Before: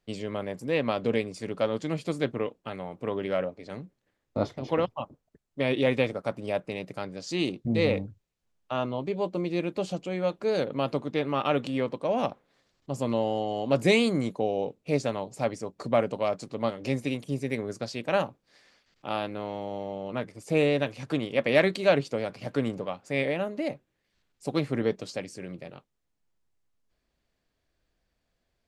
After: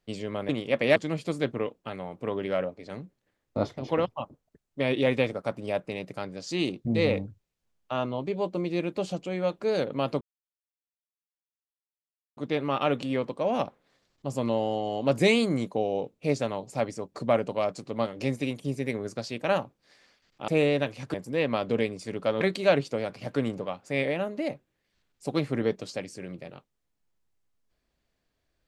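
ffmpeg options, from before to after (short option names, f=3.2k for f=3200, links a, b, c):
-filter_complex "[0:a]asplit=7[a][b][c][d][e][f][g];[a]atrim=end=0.492[h];[b]atrim=start=21.138:end=21.612[i];[c]atrim=start=1.758:end=11.01,asetpts=PTS-STARTPTS,afade=t=out:st=9.248:d=0.004:c=hsin,apad=pad_dur=2.16[j];[d]atrim=start=11.01:end=19.122,asetpts=PTS-STARTPTS,afade=t=in:d=0.004:c=hsin[k];[e]atrim=start=20.478:end=21.142[l];[f]atrim=start=0.488:end=1.762[m];[g]atrim=start=21.608[n];[h][i]acrossfade=d=0.004:c1=hsin:c2=hsin[o];[j][k]concat=n=2:v=0:a=1[p];[o][p]acrossfade=d=0.004:c1=hsin:c2=hsin[q];[q][l]acrossfade=d=0.004:c1=hsin:c2=hsin[r];[r][m]acrossfade=d=0.004:c1=hsin:c2=hsin[s];[s][n]acrossfade=d=0.004:c1=hsin:c2=hsin"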